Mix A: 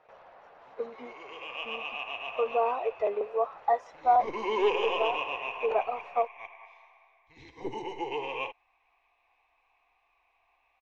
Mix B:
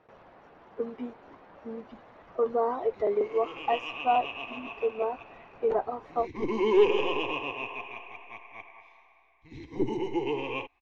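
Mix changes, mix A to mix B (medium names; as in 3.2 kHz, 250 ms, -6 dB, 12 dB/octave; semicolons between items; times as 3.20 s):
background: entry +2.15 s; master: add resonant low shelf 420 Hz +10 dB, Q 1.5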